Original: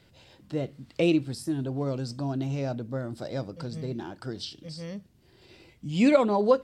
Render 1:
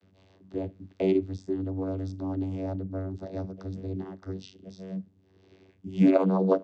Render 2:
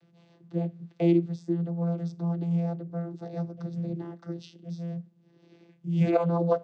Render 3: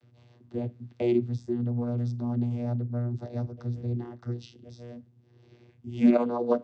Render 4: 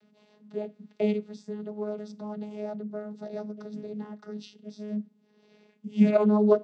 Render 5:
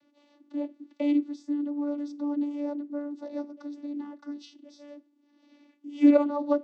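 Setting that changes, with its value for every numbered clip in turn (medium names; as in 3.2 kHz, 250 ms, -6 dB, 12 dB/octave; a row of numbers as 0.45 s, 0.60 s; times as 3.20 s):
vocoder, frequency: 95 Hz, 170 Hz, 120 Hz, 210 Hz, 290 Hz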